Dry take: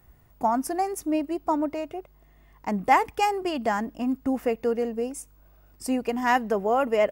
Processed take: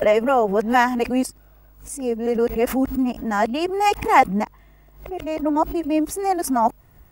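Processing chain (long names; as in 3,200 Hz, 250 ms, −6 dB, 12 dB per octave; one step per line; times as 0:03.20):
played backwards from end to start
background raised ahead of every attack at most 120 dB per second
level +5 dB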